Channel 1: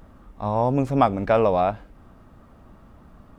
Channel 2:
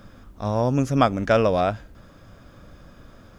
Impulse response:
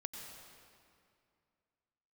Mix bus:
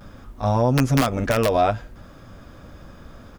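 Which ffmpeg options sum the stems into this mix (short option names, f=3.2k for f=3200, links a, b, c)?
-filter_complex "[0:a]aeval=exprs='(mod(3.35*val(0)+1,2)-1)/3.35':c=same,volume=-0.5dB[a];[1:a]adelay=8,volume=3dB[b];[a][b]amix=inputs=2:normalize=0,alimiter=limit=-10dB:level=0:latency=1:release=88"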